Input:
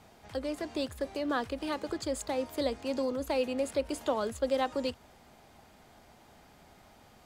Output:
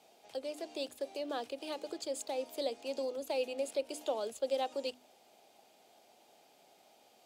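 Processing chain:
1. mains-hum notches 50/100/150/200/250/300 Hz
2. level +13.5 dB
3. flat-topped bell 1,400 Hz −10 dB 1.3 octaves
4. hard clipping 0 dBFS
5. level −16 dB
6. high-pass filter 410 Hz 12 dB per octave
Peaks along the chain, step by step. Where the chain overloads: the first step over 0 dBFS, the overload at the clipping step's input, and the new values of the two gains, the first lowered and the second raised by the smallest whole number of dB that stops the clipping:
−18.0, −4.5, −5.5, −5.5, −21.5, −23.0 dBFS
no step passes full scale

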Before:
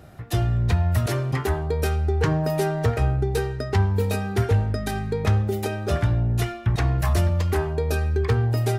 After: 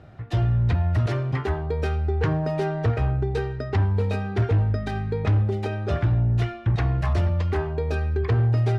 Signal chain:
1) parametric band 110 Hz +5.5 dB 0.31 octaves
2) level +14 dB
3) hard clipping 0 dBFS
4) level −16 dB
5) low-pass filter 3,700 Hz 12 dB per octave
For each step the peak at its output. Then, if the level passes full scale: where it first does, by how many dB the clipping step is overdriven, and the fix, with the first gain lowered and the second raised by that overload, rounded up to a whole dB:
−8.0, +6.0, 0.0, −16.0, −15.5 dBFS
step 2, 6.0 dB
step 2 +8 dB, step 4 −10 dB

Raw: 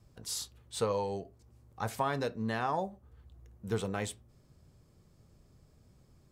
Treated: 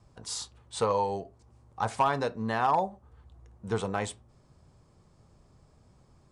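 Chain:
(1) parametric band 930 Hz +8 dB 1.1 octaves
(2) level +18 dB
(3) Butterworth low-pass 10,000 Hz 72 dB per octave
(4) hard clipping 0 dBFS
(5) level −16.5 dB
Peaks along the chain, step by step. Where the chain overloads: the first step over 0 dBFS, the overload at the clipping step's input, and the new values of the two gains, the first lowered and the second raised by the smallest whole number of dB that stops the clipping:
−12.5, +5.5, +5.5, 0.0, −16.5 dBFS
step 2, 5.5 dB
step 2 +12 dB, step 5 −10.5 dB

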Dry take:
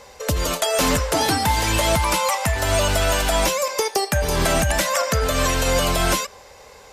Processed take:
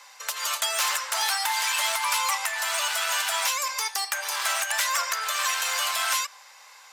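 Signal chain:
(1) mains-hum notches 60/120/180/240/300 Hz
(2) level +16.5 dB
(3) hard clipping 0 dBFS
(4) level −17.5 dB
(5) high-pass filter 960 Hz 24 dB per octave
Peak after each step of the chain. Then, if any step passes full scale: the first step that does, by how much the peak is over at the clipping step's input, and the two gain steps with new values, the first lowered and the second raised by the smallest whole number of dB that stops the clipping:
−9.0, +7.5, 0.0, −17.5, −11.5 dBFS
step 2, 7.5 dB
step 2 +8.5 dB, step 4 −9.5 dB

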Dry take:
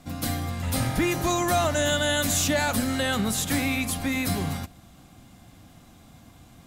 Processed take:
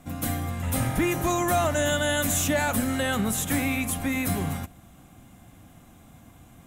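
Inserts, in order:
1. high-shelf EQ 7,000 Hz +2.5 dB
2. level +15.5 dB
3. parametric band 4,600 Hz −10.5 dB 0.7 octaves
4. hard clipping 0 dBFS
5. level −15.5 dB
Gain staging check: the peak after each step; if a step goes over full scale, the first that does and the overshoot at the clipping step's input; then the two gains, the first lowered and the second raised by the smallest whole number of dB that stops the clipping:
−11.5, +4.0, +3.5, 0.0, −15.5 dBFS
step 2, 3.5 dB
step 2 +11.5 dB, step 5 −11.5 dB

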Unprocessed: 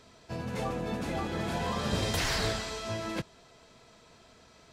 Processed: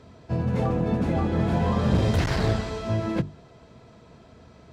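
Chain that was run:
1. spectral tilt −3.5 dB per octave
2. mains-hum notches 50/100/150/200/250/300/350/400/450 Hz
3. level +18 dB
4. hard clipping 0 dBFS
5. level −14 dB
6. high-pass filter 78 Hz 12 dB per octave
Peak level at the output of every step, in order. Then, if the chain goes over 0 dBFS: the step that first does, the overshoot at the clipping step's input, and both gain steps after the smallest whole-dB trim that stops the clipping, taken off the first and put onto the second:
−9.0, −9.5, +8.5, 0.0, −14.0, −10.0 dBFS
step 3, 8.5 dB
step 3 +9 dB, step 5 −5 dB

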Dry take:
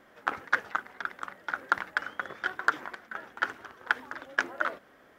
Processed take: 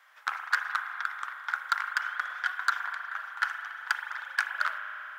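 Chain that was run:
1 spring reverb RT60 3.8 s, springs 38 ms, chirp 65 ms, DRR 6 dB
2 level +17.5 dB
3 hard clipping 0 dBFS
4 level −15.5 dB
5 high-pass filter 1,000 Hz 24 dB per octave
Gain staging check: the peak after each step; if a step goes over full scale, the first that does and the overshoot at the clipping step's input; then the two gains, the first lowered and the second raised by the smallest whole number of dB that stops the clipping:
−9.0, +8.5, 0.0, −15.5, −11.0 dBFS
step 2, 8.5 dB
step 2 +8.5 dB, step 4 −6.5 dB

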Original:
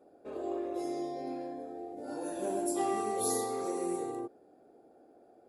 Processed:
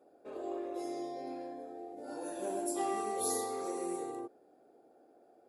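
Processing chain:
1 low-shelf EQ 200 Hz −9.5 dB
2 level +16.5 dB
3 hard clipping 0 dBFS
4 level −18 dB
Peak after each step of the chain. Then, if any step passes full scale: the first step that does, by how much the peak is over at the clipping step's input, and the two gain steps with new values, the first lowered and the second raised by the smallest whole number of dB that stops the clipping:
−20.0, −3.5, −3.5, −21.5 dBFS
no step passes full scale

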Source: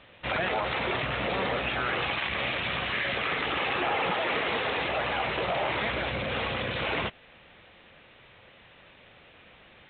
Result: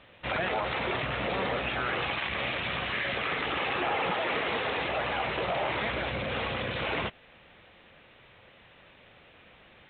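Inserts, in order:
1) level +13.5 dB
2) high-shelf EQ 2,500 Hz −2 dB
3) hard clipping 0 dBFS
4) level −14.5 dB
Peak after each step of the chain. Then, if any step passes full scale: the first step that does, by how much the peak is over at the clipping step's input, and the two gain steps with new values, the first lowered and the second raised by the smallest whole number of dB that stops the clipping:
−2.0, −2.5, −2.5, −17.0 dBFS
no step passes full scale

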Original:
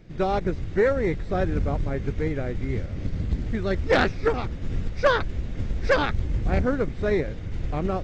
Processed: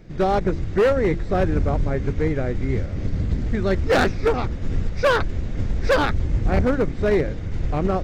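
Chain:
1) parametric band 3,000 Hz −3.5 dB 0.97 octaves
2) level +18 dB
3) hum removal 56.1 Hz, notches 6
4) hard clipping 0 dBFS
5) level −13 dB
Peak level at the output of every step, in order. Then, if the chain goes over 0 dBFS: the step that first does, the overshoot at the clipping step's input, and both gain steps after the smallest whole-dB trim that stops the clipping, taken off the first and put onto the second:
−9.0, +9.0, +9.5, 0.0, −13.0 dBFS
step 2, 9.5 dB
step 2 +8 dB, step 5 −3 dB

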